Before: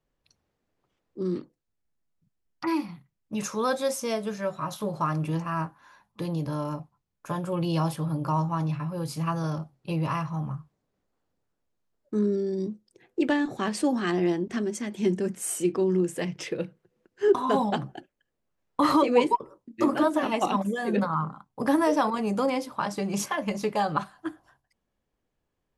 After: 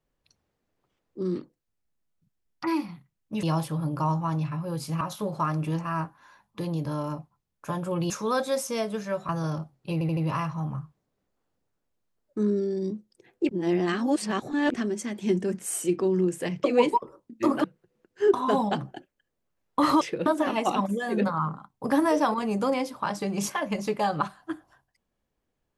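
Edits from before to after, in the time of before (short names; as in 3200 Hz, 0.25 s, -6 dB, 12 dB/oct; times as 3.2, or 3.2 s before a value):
3.43–4.62 swap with 7.71–9.29
9.93 stutter 0.08 s, 4 plays
13.25–14.5 reverse
16.4–16.65 swap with 19.02–20.02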